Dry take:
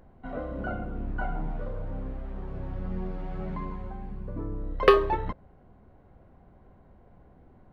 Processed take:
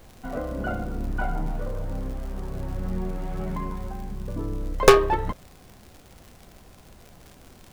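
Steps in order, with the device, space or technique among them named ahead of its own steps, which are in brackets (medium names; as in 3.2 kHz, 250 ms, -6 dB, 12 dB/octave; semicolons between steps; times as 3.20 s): record under a worn stylus (tracing distortion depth 0.49 ms; crackle 100 per s -40 dBFS; pink noise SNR 29 dB); trim +4 dB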